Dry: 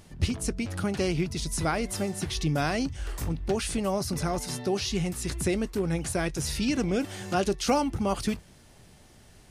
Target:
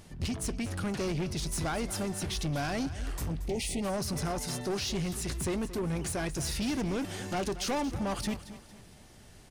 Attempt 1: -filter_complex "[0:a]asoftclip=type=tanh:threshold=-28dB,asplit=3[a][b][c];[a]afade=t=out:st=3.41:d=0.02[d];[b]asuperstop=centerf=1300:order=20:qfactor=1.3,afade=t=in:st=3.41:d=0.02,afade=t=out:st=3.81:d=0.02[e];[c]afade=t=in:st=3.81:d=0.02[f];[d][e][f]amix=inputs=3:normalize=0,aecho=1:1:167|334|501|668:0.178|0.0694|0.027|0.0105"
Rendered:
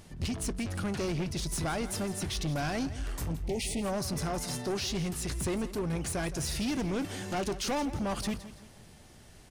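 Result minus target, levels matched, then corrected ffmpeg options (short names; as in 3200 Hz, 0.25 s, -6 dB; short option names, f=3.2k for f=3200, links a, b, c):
echo 61 ms early
-filter_complex "[0:a]asoftclip=type=tanh:threshold=-28dB,asplit=3[a][b][c];[a]afade=t=out:st=3.41:d=0.02[d];[b]asuperstop=centerf=1300:order=20:qfactor=1.3,afade=t=in:st=3.41:d=0.02,afade=t=out:st=3.81:d=0.02[e];[c]afade=t=in:st=3.81:d=0.02[f];[d][e][f]amix=inputs=3:normalize=0,aecho=1:1:228|456|684|912:0.178|0.0694|0.027|0.0105"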